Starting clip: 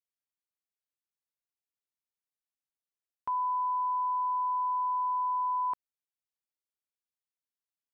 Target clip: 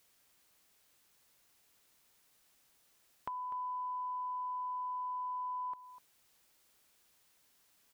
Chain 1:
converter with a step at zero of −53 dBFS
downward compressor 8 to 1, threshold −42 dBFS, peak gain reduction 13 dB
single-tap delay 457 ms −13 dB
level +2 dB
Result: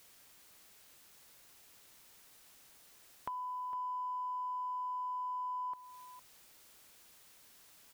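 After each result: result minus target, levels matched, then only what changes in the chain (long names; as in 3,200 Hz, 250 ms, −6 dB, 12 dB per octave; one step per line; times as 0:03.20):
echo 209 ms late; converter with a step at zero: distortion +9 dB
change: single-tap delay 248 ms −13 dB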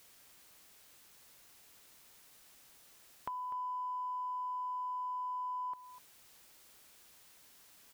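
converter with a step at zero: distortion +9 dB
change: converter with a step at zero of −62.5 dBFS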